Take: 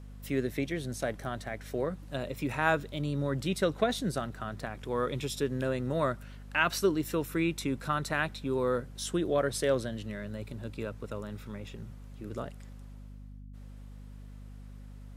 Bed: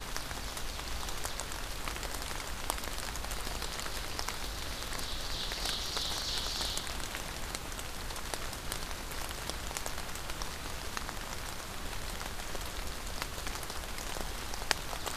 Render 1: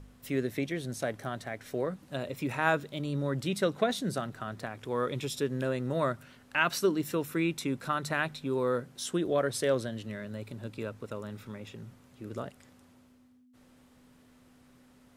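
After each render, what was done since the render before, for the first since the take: de-hum 50 Hz, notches 4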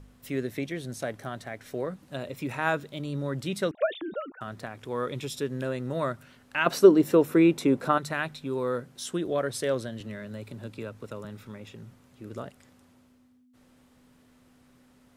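3.71–4.41 s: formants replaced by sine waves; 6.66–7.98 s: peaking EQ 470 Hz +12.5 dB 2.6 oct; 10.00–11.25 s: three bands compressed up and down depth 40%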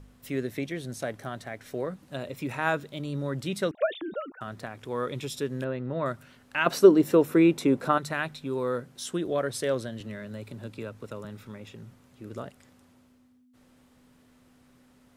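5.64–6.06 s: distance through air 270 m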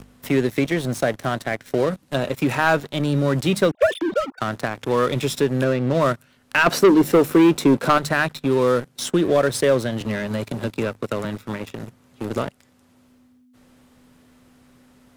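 waveshaping leveller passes 3; three bands compressed up and down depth 40%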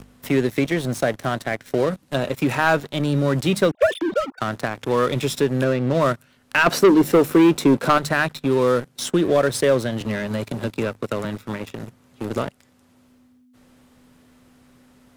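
no audible change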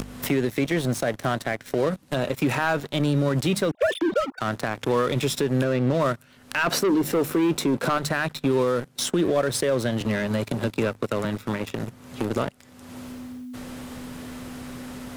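upward compressor, threshold -22 dBFS; peak limiter -13.5 dBFS, peak gain reduction 10 dB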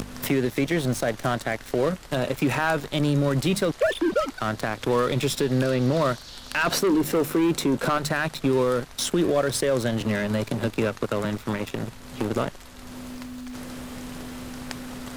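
add bed -7 dB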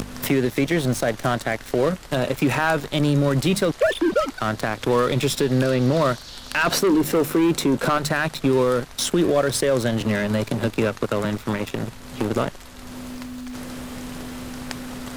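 trim +3 dB

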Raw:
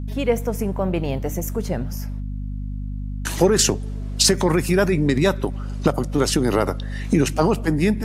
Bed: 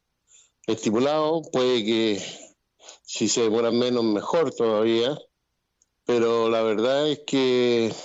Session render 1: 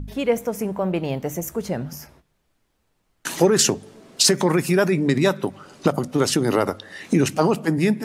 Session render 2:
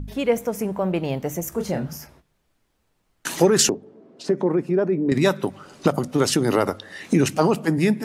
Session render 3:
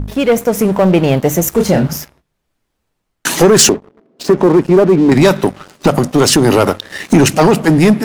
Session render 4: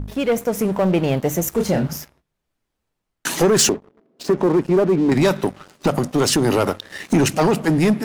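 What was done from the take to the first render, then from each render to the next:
de-hum 50 Hz, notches 5
1.49–1.97 s: doubling 30 ms -5.5 dB; 3.69–5.12 s: band-pass filter 350 Hz, Q 1
waveshaping leveller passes 3; level rider gain up to 6 dB
trim -7.5 dB

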